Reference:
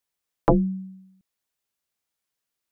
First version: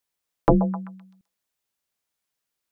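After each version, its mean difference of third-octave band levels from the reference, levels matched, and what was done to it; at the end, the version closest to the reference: 3.5 dB: repeats whose band climbs or falls 129 ms, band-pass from 690 Hz, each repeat 0.7 oct, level -9 dB; trim +1 dB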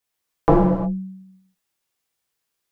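9.5 dB: gated-style reverb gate 390 ms falling, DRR -4.5 dB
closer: first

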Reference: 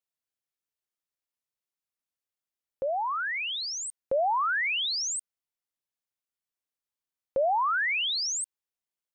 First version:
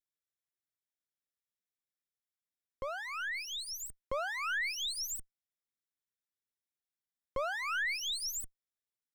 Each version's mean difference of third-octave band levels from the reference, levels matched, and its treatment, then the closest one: 11.5 dB: comb filter that takes the minimum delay 0.55 ms; trim -5.5 dB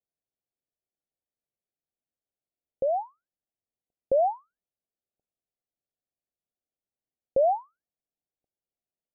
4.0 dB: steep low-pass 780 Hz 72 dB/octave; trim +4 dB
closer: second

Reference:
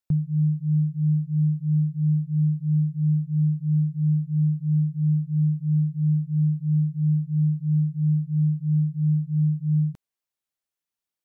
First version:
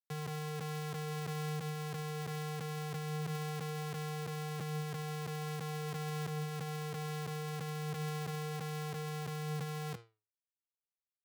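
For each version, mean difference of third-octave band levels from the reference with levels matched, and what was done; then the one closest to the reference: 23.0 dB: Schmitt trigger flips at -46 dBFS; Bessel high-pass 160 Hz, order 8; flange 0.21 Hz, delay 6.6 ms, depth 9.7 ms, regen +81%; peak limiter -33.5 dBFS, peak gain reduction 12.5 dB; trim +1 dB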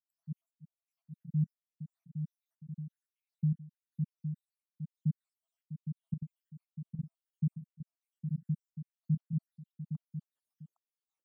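4.0 dB: random holes in the spectrogram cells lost 85%; high-pass 240 Hz 12 dB/octave; trance gate ".xxxxx....xx" 176 bpm -12 dB; delay 812 ms -7.5 dB; trim +2 dB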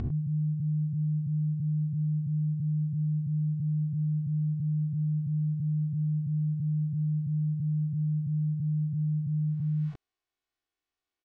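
1.0 dB: reverse spectral sustain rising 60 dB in 1.38 s; comb 2.7 ms, depth 72%; peak limiter -24.5 dBFS, peak gain reduction 9 dB; distance through air 130 m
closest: third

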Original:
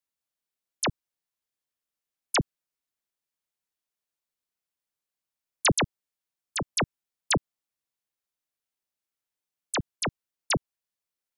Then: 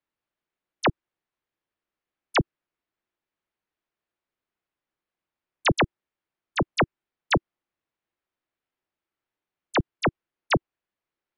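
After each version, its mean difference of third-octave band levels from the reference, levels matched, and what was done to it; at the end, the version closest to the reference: 4.0 dB: low-pass 2.4 kHz 12 dB/octave; peaking EQ 340 Hz +5.5 dB 0.33 oct; peak limiter -21.5 dBFS, peak gain reduction 8 dB; trim +7 dB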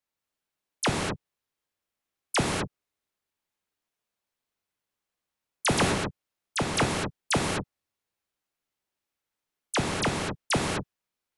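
12.0 dB: compression, threshold -25 dBFS, peak gain reduction 6 dB; treble shelf 4.2 kHz -8.5 dB; gated-style reverb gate 270 ms flat, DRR -0.5 dB; trim +4 dB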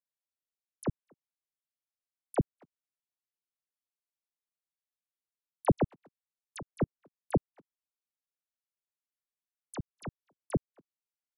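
8.0 dB: low-pass that closes with the level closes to 1.2 kHz, closed at -26.5 dBFS; gate -27 dBFS, range -12 dB; speakerphone echo 240 ms, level -28 dB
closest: first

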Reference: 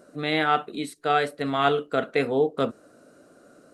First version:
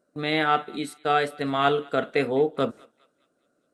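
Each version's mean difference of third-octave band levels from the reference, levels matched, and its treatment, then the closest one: 3.0 dB: gate -43 dBFS, range -18 dB; on a send: thinning echo 205 ms, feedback 50%, high-pass 1 kHz, level -23 dB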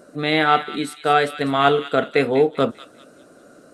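2.0 dB: on a send: feedback echo behind a high-pass 197 ms, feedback 35%, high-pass 1.9 kHz, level -10 dB; on the sum: trim +5.5 dB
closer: second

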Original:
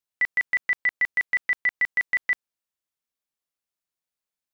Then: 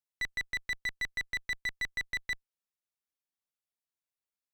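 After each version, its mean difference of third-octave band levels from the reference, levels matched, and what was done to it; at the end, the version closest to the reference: 7.0 dB: one-sided clip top -30.5 dBFS, bottom -17.5 dBFS; trim -7.5 dB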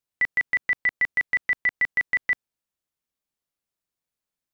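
1.5 dB: bass shelf 430 Hz +7 dB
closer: second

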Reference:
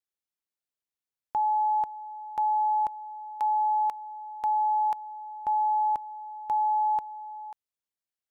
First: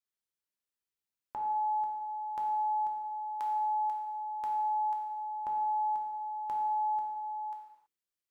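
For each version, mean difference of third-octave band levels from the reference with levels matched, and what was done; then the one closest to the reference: 2.5 dB: peaking EQ 720 Hz -6 dB 0.33 oct; de-hum 64.49 Hz, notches 7; compression 6:1, threshold -34 dBFS, peak gain reduction 8 dB; gated-style reverb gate 350 ms falling, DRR -0.5 dB; trim -4.5 dB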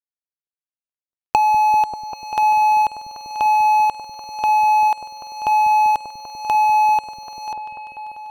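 7.5 dB: median filter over 25 samples; recorder AGC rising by 14 dB/s; waveshaping leveller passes 3; on a send: delay with an opening low-pass 196 ms, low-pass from 200 Hz, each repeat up 1 oct, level -3 dB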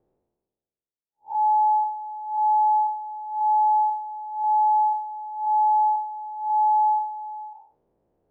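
1.5 dB: spectral blur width 155 ms; level-controlled noise filter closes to 350 Hz, open at -28 dBFS; high-order bell 590 Hz +8 dB; reverse; upward compressor, threshold -39 dBFS; reverse; trim -2 dB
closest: third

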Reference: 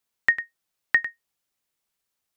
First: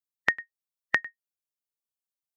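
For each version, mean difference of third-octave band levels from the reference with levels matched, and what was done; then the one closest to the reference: 3.0 dB: expander on every frequency bin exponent 1.5; high-pass 64 Hz 24 dB/octave; treble shelf 4.4 kHz -10 dB; compression, threshold -30 dBFS, peak gain reduction 12.5 dB; trim +8 dB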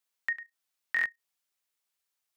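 5.0 dB: bass shelf 470 Hz -11.5 dB; level held to a coarse grid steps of 14 dB; buffer glitch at 0.94 s, samples 1024, times 4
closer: first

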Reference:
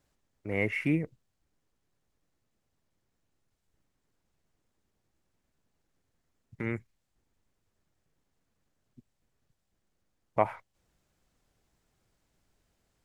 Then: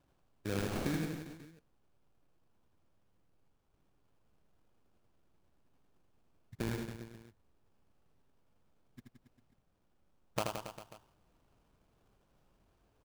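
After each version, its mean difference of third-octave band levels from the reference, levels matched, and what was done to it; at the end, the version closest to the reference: 15.0 dB: sample-rate reducer 2 kHz, jitter 20%; compression 12:1, threshold -33 dBFS, peak gain reduction 15.5 dB; on a send: reverse bouncing-ball echo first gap 80 ms, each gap 1.15×, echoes 5; on the sum: trim +1 dB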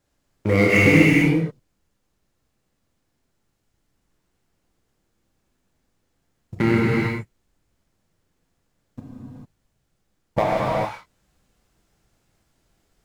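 9.5 dB: compression 6:1, threshold -33 dBFS, peak gain reduction 14 dB; waveshaping leveller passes 3; gated-style reverb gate 470 ms flat, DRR -6 dB; trim +6.5 dB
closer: second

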